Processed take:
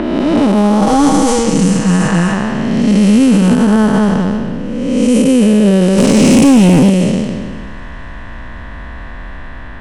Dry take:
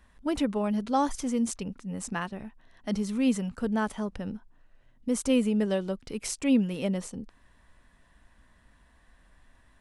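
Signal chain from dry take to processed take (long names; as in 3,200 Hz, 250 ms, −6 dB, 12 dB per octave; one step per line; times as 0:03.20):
spectrum smeared in time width 592 ms
in parallel at 0 dB: upward compression, threshold −37 dBFS
0:00.81–0:02.34: on the sum: comb filter 6.3 ms, depth 77%
delay with a high-pass on its return 250 ms, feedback 76%, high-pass 3,600 Hz, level −13 dB
low-pass that shuts in the quiet parts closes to 2,100 Hz, open at −23.5 dBFS
0:05.98–0:06.90: leveller curve on the samples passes 2
boost into a limiter +21.5 dB
level −1 dB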